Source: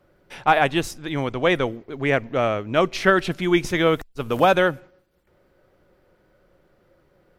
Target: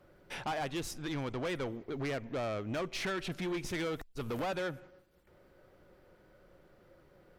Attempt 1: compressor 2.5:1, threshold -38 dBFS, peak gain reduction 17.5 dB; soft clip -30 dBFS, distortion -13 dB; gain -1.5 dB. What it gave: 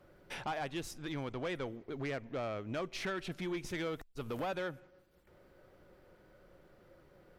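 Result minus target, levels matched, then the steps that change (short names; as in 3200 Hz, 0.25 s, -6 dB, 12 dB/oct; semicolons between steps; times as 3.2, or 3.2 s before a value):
compressor: peak gain reduction +5 dB
change: compressor 2.5:1, threshold -29.5 dBFS, peak gain reduction 12 dB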